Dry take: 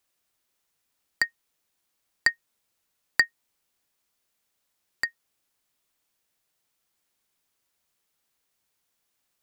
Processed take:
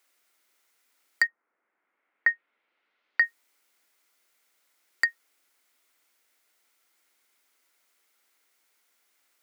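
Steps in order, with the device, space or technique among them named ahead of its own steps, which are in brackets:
laptop speaker (high-pass filter 260 Hz 24 dB per octave; parametric band 1,400 Hz +6 dB 0.26 octaves; parametric band 2,100 Hz +7.5 dB 0.29 octaves; brickwall limiter −13.5 dBFS, peak gain reduction 12.5 dB)
0:01.26–0:03.20: low-pass filter 1,500 Hz → 3,900 Hz 24 dB per octave
level +5.5 dB

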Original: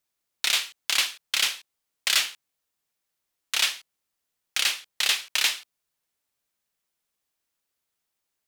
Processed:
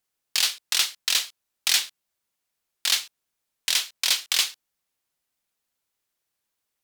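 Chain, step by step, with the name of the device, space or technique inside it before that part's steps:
nightcore (speed change +24%)
level +1.5 dB

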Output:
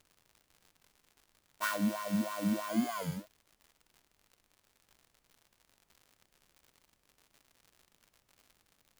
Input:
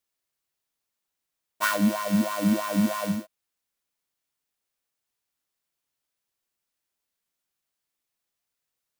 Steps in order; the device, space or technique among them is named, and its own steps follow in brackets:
warped LP (wow of a warped record 33 1/3 rpm, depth 250 cents; surface crackle 120 per second −39 dBFS; pink noise bed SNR 36 dB)
0:02.69–0:03.17: EQ curve with evenly spaced ripples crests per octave 1.8, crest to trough 9 dB
level −9 dB

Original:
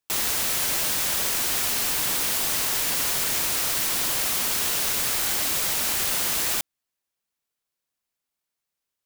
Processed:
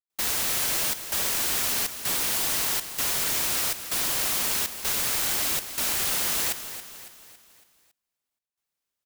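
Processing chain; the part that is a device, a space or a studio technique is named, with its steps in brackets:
trance gate with a delay (gate pattern "..xxxxxxxx" 161 BPM −60 dB; repeating echo 278 ms, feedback 48%, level −11.5 dB)
level −1.5 dB

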